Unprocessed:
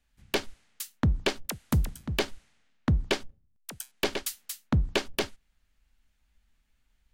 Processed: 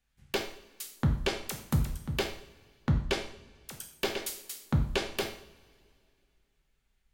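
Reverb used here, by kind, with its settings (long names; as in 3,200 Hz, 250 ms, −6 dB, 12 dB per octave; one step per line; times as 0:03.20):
coupled-rooms reverb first 0.54 s, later 2.5 s, from −22 dB, DRR 2 dB
level −4.5 dB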